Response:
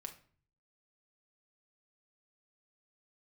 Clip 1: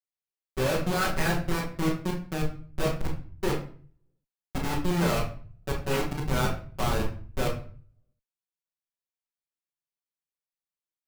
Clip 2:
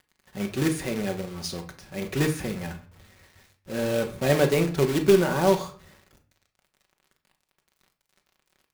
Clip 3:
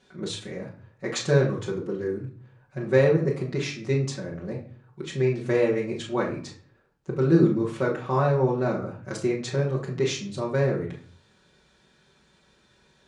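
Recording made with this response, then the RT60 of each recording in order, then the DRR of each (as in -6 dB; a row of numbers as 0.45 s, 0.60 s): 2; 0.45 s, 0.45 s, 0.45 s; -10.0 dB, 3.5 dB, -4.5 dB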